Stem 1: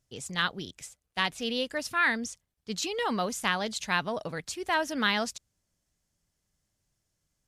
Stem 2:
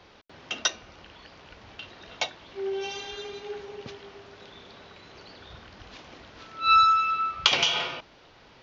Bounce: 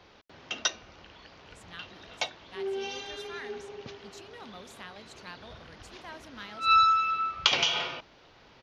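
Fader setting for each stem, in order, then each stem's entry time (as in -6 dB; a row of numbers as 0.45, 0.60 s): -18.0, -2.5 dB; 1.35, 0.00 s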